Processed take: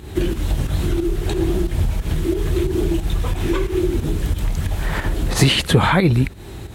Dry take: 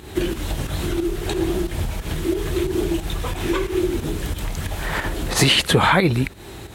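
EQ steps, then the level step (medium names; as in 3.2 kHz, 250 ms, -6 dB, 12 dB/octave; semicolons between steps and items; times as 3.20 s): bass shelf 240 Hz +9 dB; -2.0 dB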